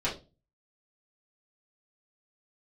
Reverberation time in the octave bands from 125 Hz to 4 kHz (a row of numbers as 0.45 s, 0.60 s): 0.55 s, 0.40 s, 0.35 s, 0.25 s, 0.20 s, 0.25 s